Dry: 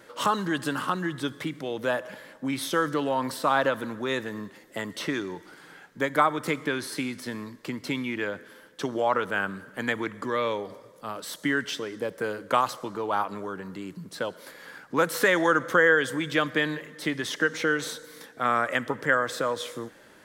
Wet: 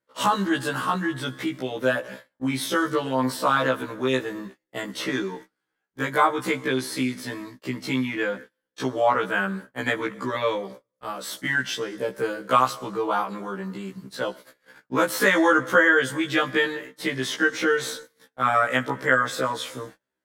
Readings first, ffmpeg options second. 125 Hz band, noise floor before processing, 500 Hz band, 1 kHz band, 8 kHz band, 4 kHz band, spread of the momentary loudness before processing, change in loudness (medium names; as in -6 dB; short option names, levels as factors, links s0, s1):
+3.0 dB, -53 dBFS, +2.5 dB, +3.0 dB, +3.0 dB, +3.0 dB, 14 LU, +3.0 dB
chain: -af "agate=range=0.0178:threshold=0.00794:ratio=16:detection=peak,afftfilt=real='re*1.73*eq(mod(b,3),0)':imag='im*1.73*eq(mod(b,3),0)':win_size=2048:overlap=0.75,volume=1.88"